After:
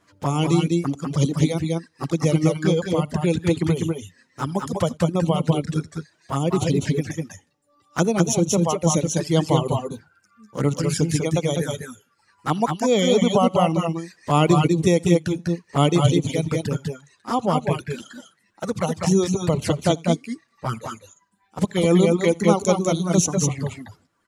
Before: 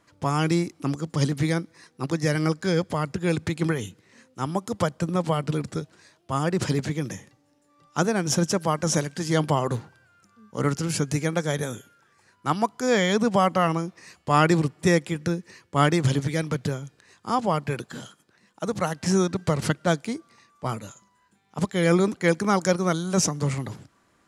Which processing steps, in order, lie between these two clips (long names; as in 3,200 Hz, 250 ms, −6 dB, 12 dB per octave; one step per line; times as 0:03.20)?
flanger swept by the level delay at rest 10.7 ms, full sweep at −21.5 dBFS
multi-tap delay 62/80/87/197/209 ms −18.5/−17.5/−18.5/−4/−8 dB
reverb reduction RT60 0.93 s
level +4.5 dB